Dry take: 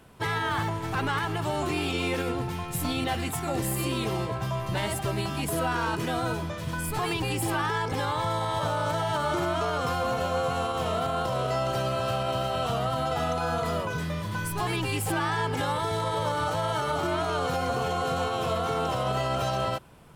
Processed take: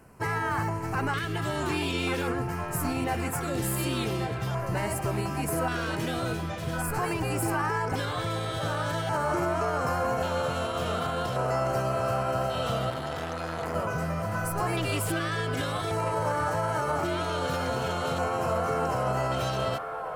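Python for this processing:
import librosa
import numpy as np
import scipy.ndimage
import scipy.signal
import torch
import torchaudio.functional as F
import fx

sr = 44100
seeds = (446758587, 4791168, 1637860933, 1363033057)

y = fx.filter_lfo_notch(x, sr, shape='square', hz=0.44, low_hz=890.0, high_hz=3500.0, q=1.2)
y = fx.echo_wet_bandpass(y, sr, ms=1139, feedback_pct=63, hz=990.0, wet_db=-6)
y = fx.transformer_sat(y, sr, knee_hz=940.0, at=(12.9, 13.75))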